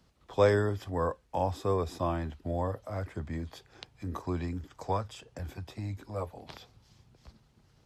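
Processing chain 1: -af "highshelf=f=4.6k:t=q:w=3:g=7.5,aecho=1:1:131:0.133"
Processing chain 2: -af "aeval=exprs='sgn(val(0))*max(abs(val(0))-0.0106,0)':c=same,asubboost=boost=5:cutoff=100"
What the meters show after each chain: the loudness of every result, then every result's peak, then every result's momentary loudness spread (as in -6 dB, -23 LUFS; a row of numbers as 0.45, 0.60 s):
-33.5, -34.5 LUFS; -11.5, -11.5 dBFS; 15, 16 LU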